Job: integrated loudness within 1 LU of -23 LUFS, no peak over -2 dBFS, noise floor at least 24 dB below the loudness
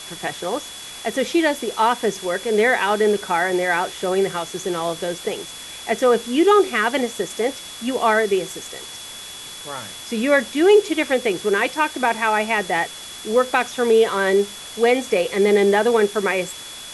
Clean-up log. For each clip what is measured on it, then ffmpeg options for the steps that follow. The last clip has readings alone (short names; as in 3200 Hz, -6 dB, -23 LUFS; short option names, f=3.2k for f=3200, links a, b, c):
steady tone 3400 Hz; tone level -37 dBFS; noise floor -36 dBFS; noise floor target -44 dBFS; loudness -20.0 LUFS; peak -4.5 dBFS; loudness target -23.0 LUFS
-> -af "bandreject=f=3.4k:w=30"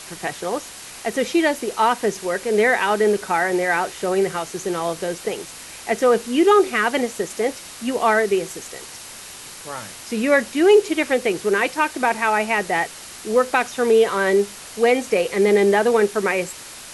steady tone none; noise floor -38 dBFS; noise floor target -44 dBFS
-> -af "afftdn=nr=6:nf=-38"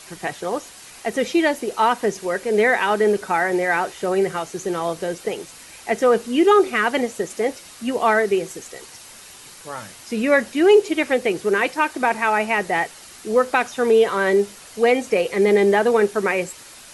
noise floor -43 dBFS; noise floor target -44 dBFS
-> -af "afftdn=nr=6:nf=-43"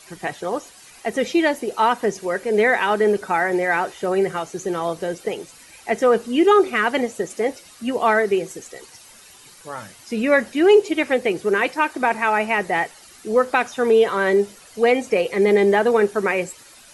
noise floor -47 dBFS; loudness -20.0 LUFS; peak -4.5 dBFS; loudness target -23.0 LUFS
-> -af "volume=-3dB"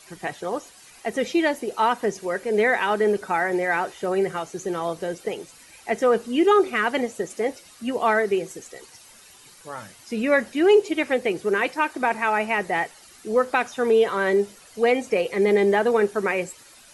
loudness -23.0 LUFS; peak -7.5 dBFS; noise floor -50 dBFS